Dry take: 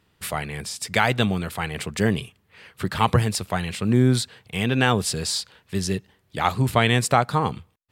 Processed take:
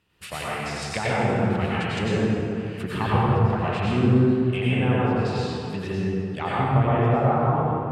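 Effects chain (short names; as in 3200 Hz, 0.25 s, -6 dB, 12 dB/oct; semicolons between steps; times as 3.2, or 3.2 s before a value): treble ducked by the level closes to 900 Hz, closed at -18.5 dBFS; bell 2700 Hz +7.5 dB 0.33 oct; plate-style reverb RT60 2.7 s, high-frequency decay 0.5×, pre-delay 80 ms, DRR -8 dB; gain -7 dB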